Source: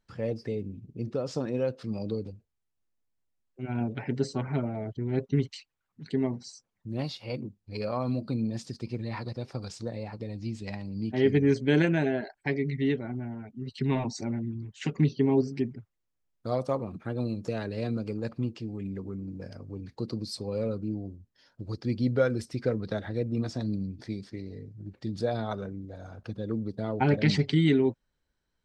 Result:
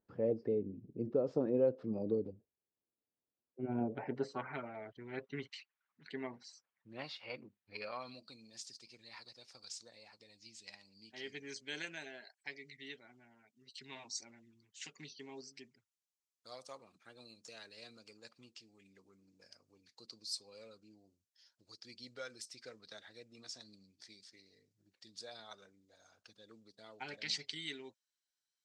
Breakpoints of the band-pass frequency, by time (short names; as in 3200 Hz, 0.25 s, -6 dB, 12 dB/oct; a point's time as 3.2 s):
band-pass, Q 1.1
3.73 s 400 Hz
4.57 s 1800 Hz
7.73 s 1800 Hz
8.37 s 6600 Hz